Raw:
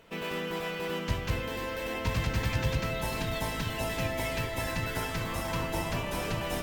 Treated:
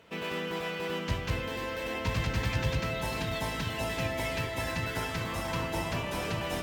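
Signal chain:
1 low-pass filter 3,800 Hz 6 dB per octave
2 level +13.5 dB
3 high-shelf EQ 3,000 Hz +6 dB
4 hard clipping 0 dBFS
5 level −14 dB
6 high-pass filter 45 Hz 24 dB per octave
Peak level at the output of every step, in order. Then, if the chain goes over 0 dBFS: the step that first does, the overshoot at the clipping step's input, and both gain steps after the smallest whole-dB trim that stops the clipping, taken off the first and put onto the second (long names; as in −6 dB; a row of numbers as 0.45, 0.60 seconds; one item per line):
−18.0, −4.5, −4.0, −4.0, −18.0, −16.5 dBFS
no step passes full scale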